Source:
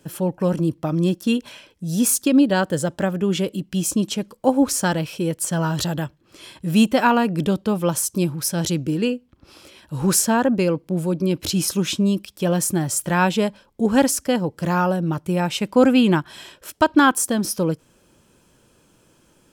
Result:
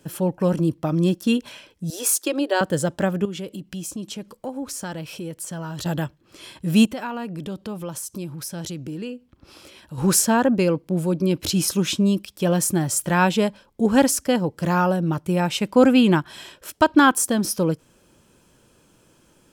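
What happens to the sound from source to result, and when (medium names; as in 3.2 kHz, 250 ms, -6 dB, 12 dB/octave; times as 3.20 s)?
1.90–2.61 s: elliptic high-pass 320 Hz
3.25–5.86 s: compression 2.5:1, threshold -33 dBFS
6.85–9.98 s: compression 2.5:1, threshold -33 dBFS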